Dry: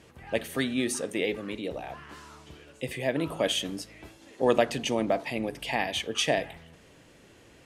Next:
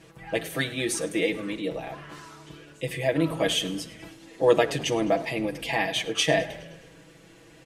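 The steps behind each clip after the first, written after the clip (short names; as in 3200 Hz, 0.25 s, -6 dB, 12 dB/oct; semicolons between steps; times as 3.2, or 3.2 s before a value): comb 6.1 ms, depth 93%; frequency-shifting echo 0.104 s, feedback 63%, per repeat -34 Hz, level -19 dB; reverb RT60 0.85 s, pre-delay 7 ms, DRR 16 dB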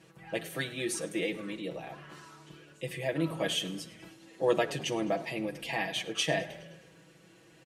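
HPF 73 Hz; comb 5.4 ms, depth 31%; gain -6.5 dB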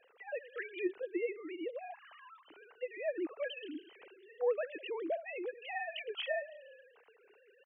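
sine-wave speech; compressor 1.5:1, threshold -50 dBFS, peak gain reduction 11 dB; gain +2.5 dB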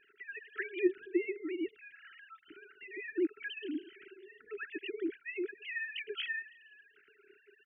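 brick-wall FIR band-stop 430–1300 Hz; air absorption 310 m; gain +7 dB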